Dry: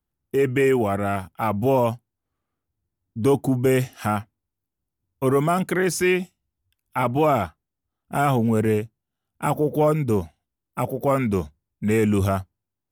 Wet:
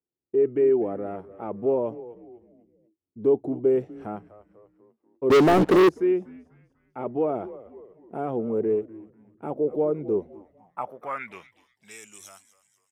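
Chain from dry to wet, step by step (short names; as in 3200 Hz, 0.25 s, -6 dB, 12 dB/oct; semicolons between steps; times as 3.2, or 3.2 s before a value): frequency-shifting echo 0.246 s, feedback 47%, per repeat -110 Hz, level -16.5 dB; band-pass sweep 400 Hz -> 6900 Hz, 10.23–12.08; 5.3–5.89 sample leveller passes 5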